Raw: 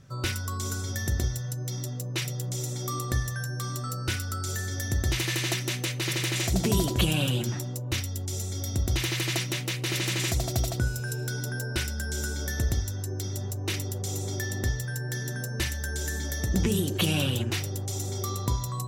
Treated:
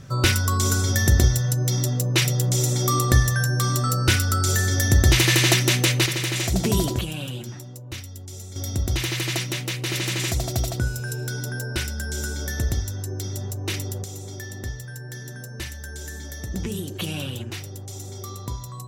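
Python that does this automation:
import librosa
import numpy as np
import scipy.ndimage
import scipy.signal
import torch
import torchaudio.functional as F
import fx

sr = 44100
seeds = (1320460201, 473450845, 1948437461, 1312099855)

y = fx.gain(x, sr, db=fx.steps((0.0, 10.5), (6.06, 3.0), (6.99, -5.5), (8.56, 2.5), (14.04, -4.0)))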